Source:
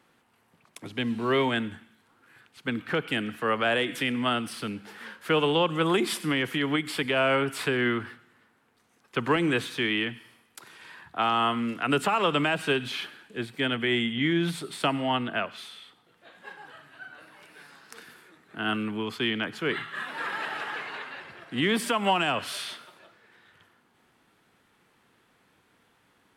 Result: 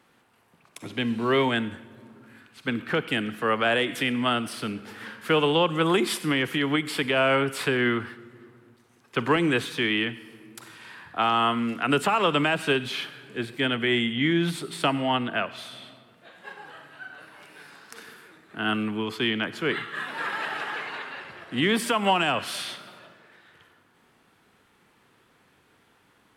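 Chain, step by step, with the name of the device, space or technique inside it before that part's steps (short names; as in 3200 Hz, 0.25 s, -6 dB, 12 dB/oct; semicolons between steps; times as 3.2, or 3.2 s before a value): compressed reverb return (on a send at -5.5 dB: reverb RT60 1.3 s, pre-delay 37 ms + compressor, threshold -40 dBFS, peak gain reduction 20 dB); on the sum: gain +2 dB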